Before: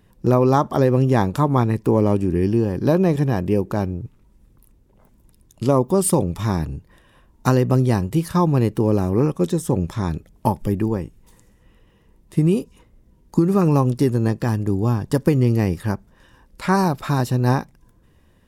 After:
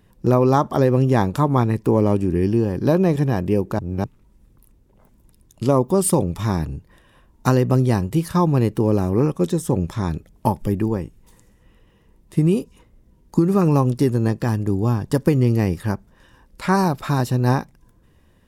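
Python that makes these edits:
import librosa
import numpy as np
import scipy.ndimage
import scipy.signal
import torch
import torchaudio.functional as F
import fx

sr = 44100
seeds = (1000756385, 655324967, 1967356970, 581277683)

y = fx.edit(x, sr, fx.reverse_span(start_s=3.79, length_s=0.25), tone=tone)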